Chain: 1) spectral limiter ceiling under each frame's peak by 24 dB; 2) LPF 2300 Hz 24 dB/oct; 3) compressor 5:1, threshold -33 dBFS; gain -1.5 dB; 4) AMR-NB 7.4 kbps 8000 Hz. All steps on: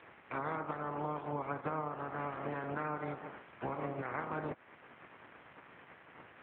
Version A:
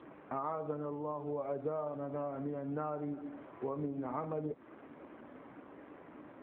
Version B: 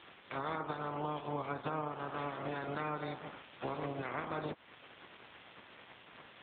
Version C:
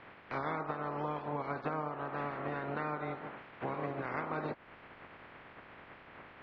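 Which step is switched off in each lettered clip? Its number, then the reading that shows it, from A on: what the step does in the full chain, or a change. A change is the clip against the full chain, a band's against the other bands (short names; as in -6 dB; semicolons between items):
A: 1, 2 kHz band -14.5 dB; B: 2, momentary loudness spread change -1 LU; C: 4, momentary loudness spread change -2 LU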